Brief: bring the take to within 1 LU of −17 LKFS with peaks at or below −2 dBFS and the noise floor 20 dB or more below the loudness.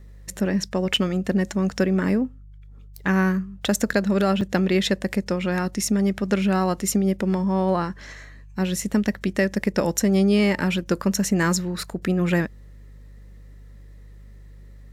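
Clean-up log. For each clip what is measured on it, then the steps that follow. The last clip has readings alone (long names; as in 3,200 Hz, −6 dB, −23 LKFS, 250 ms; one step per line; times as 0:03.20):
number of dropouts 2; longest dropout 4.4 ms; mains hum 50 Hz; hum harmonics up to 150 Hz; level of the hum −41 dBFS; integrated loudness −23.0 LKFS; sample peak −9.0 dBFS; target loudness −17.0 LKFS
→ repair the gap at 0:00.96/0:04.41, 4.4 ms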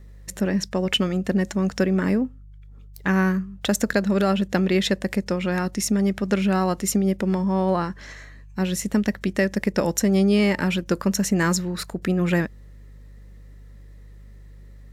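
number of dropouts 0; mains hum 50 Hz; hum harmonics up to 150 Hz; level of the hum −41 dBFS
→ hum removal 50 Hz, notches 3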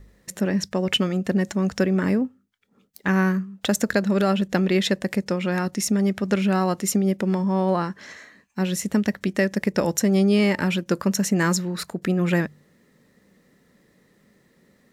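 mains hum none found; integrated loudness −23.0 LKFS; sample peak −9.0 dBFS; target loudness −17.0 LKFS
→ level +6 dB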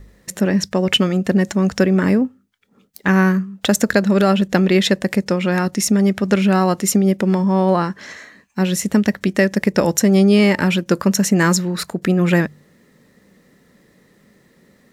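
integrated loudness −17.0 LKFS; sample peak −3.0 dBFS; background noise floor −56 dBFS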